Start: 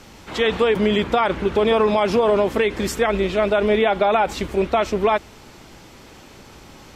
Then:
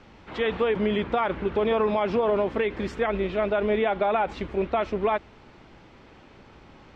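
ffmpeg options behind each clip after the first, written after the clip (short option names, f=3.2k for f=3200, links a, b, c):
-af "lowpass=2.9k,volume=-6dB"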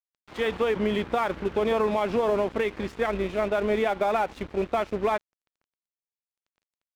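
-af "aeval=exprs='sgn(val(0))*max(abs(val(0))-0.00944,0)':c=same"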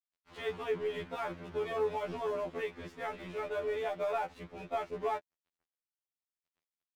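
-af "afftfilt=real='re*2*eq(mod(b,4),0)':imag='im*2*eq(mod(b,4),0)':win_size=2048:overlap=0.75,volume=-8dB"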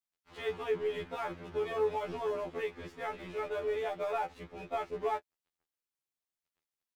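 -filter_complex "[0:a]asplit=2[a][b];[b]adelay=14,volume=-13dB[c];[a][c]amix=inputs=2:normalize=0"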